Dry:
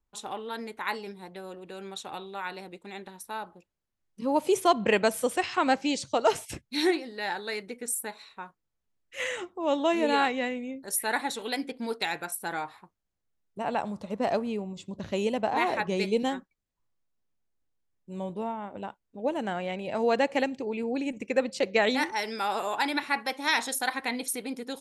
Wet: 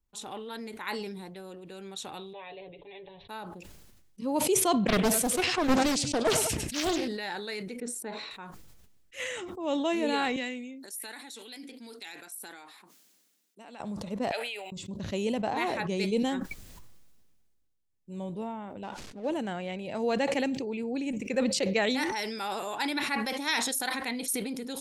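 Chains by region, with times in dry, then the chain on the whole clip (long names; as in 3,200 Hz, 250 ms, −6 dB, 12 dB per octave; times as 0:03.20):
0:02.33–0:03.29: Butterworth low-pass 3,600 Hz 72 dB per octave + phaser with its sweep stopped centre 570 Hz, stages 4 + comb filter 7.1 ms, depth 72%
0:04.87–0:07.08: repeating echo 99 ms, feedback 37%, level −18 dB + highs frequency-modulated by the lows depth 0.87 ms
0:07.80–0:08.31: band-pass filter 260–6,300 Hz + spectral tilt −3.5 dB per octave
0:10.36–0:13.80: tilt shelving filter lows −6.5 dB, about 1,400 Hz + downward compressor 2 to 1, threshold −35 dBFS + four-pole ladder high-pass 210 Hz, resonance 40%
0:14.31–0:14.72: high-pass filter 820 Hz 24 dB per octave + phaser with its sweep stopped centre 2,600 Hz, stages 4
0:18.83–0:19.30: mu-law and A-law mismatch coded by mu + low-pass filter 5,900 Hz + low-shelf EQ 130 Hz −10.5 dB
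whole clip: parametric band 1,000 Hz −6 dB 2.7 octaves; level that may fall only so fast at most 31 dB per second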